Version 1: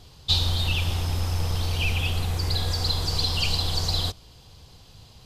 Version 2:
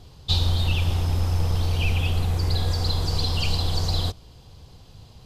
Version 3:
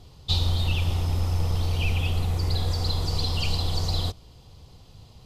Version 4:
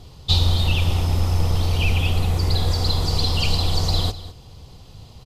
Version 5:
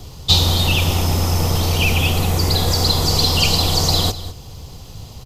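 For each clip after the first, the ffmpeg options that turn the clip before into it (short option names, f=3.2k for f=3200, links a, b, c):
-af "tiltshelf=f=1.1k:g=3.5"
-af "bandreject=f=1.6k:w=11,volume=-2dB"
-af "aecho=1:1:201:0.168,volume=6dB"
-filter_complex "[0:a]acrossover=split=110|1200[a][b][c];[a]acompressor=threshold=-28dB:ratio=6[d];[d][b][c]amix=inputs=3:normalize=0,aexciter=amount=2:drive=4.8:freq=5.6k,volume=7dB"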